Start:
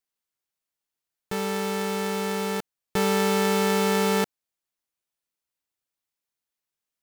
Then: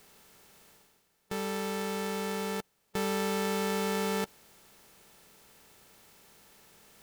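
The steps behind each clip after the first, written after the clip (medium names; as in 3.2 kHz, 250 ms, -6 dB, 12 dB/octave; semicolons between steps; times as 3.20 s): spectral levelling over time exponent 0.6; reverse; upward compressor, threshold -36 dBFS; reverse; trim -8.5 dB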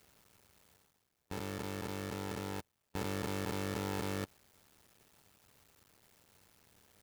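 cycle switcher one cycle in 2, muted; peaking EQ 88 Hz +9 dB 1.5 oct; trim -5.5 dB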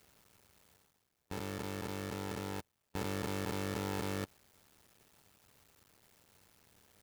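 no audible change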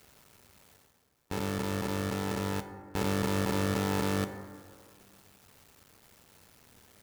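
plate-style reverb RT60 1.9 s, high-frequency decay 0.3×, DRR 8 dB; trim +6.5 dB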